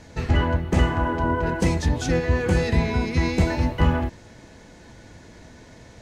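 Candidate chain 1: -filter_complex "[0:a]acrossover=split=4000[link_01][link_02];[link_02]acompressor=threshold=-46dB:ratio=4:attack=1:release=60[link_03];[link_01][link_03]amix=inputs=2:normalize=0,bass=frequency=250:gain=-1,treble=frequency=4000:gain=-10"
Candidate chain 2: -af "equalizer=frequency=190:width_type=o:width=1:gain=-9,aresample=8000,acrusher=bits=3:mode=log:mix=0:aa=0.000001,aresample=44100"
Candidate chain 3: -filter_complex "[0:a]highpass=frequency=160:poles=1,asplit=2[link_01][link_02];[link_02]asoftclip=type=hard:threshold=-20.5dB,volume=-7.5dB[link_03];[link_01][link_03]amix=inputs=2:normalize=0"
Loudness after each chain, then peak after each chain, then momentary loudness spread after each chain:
−23.5, −24.5, −22.5 LKFS; −7.0, −6.0, −9.5 dBFS; 2, 2, 2 LU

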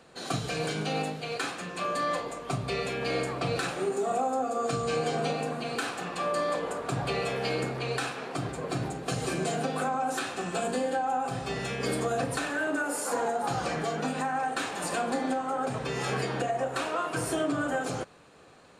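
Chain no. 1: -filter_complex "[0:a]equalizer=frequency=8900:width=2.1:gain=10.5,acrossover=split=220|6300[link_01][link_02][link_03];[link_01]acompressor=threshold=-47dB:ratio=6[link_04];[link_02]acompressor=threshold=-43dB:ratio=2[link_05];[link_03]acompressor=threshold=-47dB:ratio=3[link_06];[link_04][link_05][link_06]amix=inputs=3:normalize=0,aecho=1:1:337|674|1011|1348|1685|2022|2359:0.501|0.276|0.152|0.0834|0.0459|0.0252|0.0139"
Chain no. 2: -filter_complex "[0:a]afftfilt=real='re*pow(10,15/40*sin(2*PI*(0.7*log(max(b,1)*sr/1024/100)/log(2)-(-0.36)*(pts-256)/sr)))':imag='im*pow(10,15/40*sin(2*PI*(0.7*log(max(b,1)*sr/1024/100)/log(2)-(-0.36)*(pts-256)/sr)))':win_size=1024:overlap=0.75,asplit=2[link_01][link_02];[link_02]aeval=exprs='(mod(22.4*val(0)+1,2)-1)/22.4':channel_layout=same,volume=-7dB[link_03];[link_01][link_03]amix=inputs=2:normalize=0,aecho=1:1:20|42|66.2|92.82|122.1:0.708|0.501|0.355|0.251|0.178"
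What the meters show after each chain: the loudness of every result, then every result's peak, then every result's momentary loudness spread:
−36.5, −24.5 LKFS; −21.5, −10.5 dBFS; 2, 5 LU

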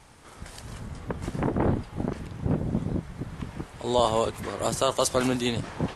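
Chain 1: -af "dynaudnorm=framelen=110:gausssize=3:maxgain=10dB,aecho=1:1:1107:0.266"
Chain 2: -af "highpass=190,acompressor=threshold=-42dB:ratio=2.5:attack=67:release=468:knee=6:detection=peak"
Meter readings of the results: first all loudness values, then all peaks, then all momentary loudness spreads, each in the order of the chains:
−19.5, −40.0 LKFS; −2.0, −20.5 dBFS; 13, 9 LU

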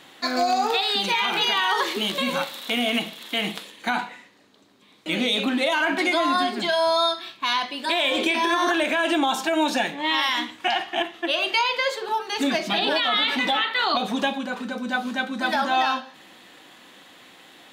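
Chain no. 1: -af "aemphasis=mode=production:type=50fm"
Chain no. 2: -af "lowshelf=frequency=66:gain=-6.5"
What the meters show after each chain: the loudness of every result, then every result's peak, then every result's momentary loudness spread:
−21.5, −23.0 LKFS; −5.0, −11.5 dBFS; 8, 7 LU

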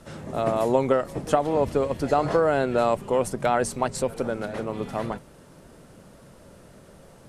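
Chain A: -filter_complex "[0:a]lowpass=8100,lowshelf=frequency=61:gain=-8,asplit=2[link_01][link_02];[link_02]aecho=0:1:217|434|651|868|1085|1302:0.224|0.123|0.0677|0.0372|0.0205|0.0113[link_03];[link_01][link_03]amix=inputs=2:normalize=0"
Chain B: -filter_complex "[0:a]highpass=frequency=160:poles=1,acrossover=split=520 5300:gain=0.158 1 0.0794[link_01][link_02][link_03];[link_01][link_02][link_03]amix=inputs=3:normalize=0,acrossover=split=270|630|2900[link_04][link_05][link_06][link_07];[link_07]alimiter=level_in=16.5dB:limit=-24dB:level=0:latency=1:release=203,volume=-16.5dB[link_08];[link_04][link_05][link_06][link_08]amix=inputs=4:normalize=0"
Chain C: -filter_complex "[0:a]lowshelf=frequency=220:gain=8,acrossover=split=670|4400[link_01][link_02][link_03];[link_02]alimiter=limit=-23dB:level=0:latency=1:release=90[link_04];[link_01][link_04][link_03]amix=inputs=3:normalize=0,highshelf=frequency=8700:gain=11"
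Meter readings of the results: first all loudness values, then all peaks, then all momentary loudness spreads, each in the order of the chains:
−25.0, −29.0, −24.0 LKFS; −5.0, −11.5, −7.5 dBFS; 10, 9, 7 LU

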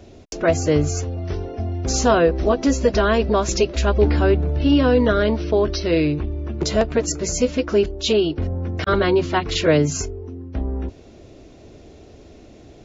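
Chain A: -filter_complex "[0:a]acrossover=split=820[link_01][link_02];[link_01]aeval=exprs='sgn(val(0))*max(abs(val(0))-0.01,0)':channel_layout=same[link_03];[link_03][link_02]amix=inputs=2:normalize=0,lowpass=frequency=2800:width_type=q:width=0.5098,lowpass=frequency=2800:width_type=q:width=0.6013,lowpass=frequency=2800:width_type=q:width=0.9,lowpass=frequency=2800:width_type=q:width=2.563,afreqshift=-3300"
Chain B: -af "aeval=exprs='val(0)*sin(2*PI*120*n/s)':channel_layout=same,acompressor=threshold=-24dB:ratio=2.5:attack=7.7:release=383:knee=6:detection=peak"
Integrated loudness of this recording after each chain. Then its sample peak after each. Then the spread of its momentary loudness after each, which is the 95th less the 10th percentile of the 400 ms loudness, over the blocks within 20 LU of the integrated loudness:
−16.5, −29.0 LKFS; −3.5, −12.0 dBFS; 11, 21 LU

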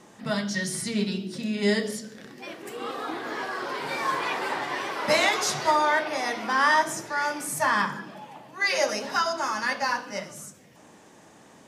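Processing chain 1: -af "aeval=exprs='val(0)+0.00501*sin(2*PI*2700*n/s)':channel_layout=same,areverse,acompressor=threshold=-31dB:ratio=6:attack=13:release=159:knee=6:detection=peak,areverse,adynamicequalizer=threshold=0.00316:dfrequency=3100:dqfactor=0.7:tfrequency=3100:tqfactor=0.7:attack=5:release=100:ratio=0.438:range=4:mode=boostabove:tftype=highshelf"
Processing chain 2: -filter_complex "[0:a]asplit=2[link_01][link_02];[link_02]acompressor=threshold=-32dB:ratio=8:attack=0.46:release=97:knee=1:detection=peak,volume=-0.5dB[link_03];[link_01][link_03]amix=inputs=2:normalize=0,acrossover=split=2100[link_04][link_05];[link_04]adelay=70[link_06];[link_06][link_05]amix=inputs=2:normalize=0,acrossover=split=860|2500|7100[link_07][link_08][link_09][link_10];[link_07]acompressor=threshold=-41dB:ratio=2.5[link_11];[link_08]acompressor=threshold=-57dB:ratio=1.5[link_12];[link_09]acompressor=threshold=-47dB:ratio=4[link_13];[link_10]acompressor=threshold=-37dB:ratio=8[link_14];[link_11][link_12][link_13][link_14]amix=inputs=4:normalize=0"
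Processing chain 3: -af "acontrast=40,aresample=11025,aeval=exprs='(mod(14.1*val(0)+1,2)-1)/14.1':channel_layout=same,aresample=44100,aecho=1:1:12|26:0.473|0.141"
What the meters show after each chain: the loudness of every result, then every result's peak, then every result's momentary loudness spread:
−31.0, −35.0, −26.0 LKFS; −14.0, −20.0, −16.0 dBFS; 11, 9, 8 LU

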